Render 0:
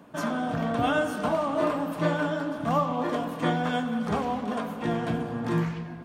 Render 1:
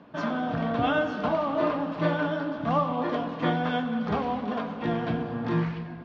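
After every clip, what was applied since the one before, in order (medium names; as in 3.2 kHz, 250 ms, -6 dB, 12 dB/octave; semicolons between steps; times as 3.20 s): inverse Chebyshev low-pass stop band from 8.8 kHz, stop band 40 dB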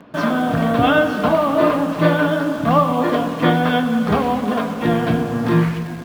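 peaking EQ 850 Hz -3.5 dB 0.33 oct; in parallel at -7.5 dB: bit crusher 7-bit; on the sum: trim +7.5 dB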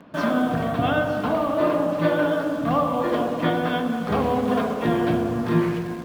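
gain riding 0.5 s; on a send: feedback echo behind a low-pass 63 ms, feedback 74%, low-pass 810 Hz, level -4 dB; on the sum: trim -6.5 dB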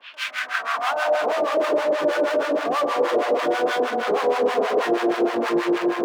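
overdrive pedal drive 39 dB, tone 2 kHz, clips at -8 dBFS; harmonic tremolo 6.3 Hz, depth 100%, crossover 780 Hz; high-pass sweep 2.9 kHz -> 410 Hz, 0.12–1.44 s; trim -5 dB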